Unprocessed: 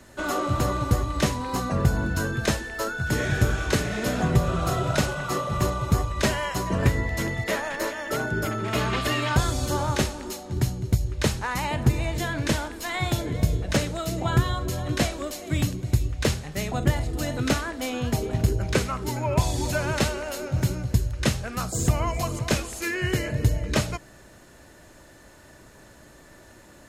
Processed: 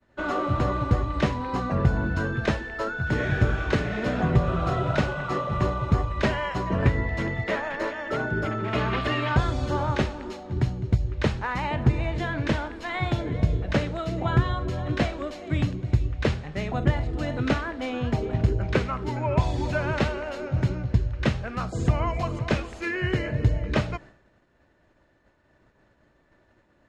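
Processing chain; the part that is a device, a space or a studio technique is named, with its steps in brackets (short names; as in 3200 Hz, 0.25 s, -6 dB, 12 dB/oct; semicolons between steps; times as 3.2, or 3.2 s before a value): hearing-loss simulation (LPF 2900 Hz 12 dB/oct; expander -41 dBFS); 20.69–21.23 LPF 7200 Hz 12 dB/oct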